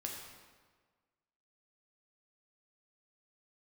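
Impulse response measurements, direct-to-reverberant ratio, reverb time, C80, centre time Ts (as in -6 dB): -1.0 dB, 1.5 s, 4.0 dB, 62 ms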